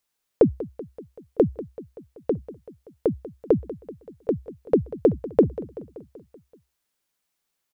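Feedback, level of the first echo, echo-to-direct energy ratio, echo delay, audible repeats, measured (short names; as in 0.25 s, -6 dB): 60%, -16.0 dB, -14.0 dB, 0.191 s, 5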